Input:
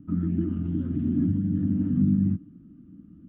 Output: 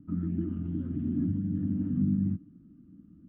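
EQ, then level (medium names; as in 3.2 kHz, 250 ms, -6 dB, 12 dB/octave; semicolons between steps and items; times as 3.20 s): distance through air 130 m; -5.0 dB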